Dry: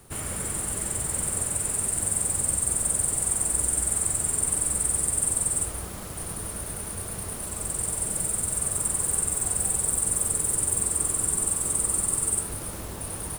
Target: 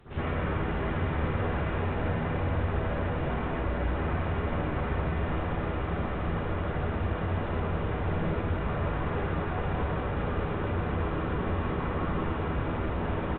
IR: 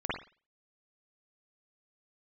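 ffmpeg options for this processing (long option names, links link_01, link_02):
-filter_complex "[0:a]aresample=8000,asoftclip=type=tanh:threshold=-34dB,aresample=44100,aecho=1:1:792:0.447[link_01];[1:a]atrim=start_sample=2205,asetrate=35721,aresample=44100[link_02];[link_01][link_02]afir=irnorm=-1:irlink=0"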